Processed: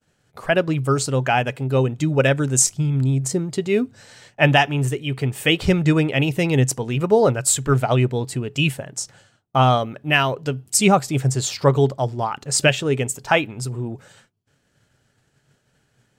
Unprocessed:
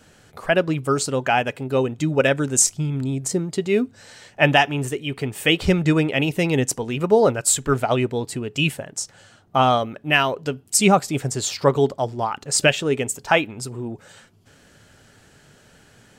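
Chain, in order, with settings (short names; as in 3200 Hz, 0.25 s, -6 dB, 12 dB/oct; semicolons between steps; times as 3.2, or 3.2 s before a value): expander -42 dBFS; bell 130 Hz +9 dB 0.29 oct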